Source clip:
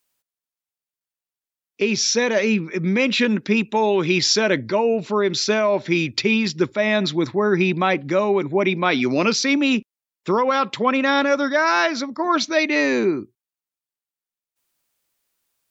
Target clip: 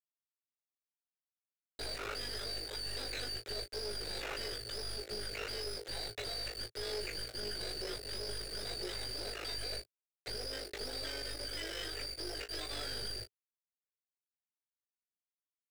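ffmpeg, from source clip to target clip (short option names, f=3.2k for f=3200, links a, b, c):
-filter_complex "[0:a]afftfilt=real='real(if(lt(b,272),68*(eq(floor(b/68),0)*3+eq(floor(b/68),1)*2+eq(floor(b/68),2)*1+eq(floor(b/68),3)*0)+mod(b,68),b),0)':imag='imag(if(lt(b,272),68*(eq(floor(b/68),0)*3+eq(floor(b/68),1)*2+eq(floor(b/68),2)*1+eq(floor(b/68),3)*0)+mod(b,68),b),0)':win_size=2048:overlap=0.75,aderivative,acontrast=31,alimiter=limit=-13dB:level=0:latency=1:release=494,acompressor=threshold=-37dB:ratio=3,aeval=exprs='val(0)*sin(2*PI*25*n/s)':c=same,aresample=11025,asoftclip=type=hard:threshold=-35.5dB,aresample=44100,acrusher=bits=5:dc=4:mix=0:aa=0.000001,firequalizer=gain_entry='entry(110,0);entry(180,-20);entry(410,5);entry(1000,-19);entry(1500,-7);entry(2600,-12)':delay=0.05:min_phase=1,aecho=1:1:19|36:0.473|0.188,asplit=2[a][b];[b]highpass=f=720:p=1,volume=25dB,asoftclip=type=tanh:threshold=-32dB[c];[a][c]amix=inputs=2:normalize=0,lowpass=f=2.5k:p=1,volume=-6dB,volume=5.5dB"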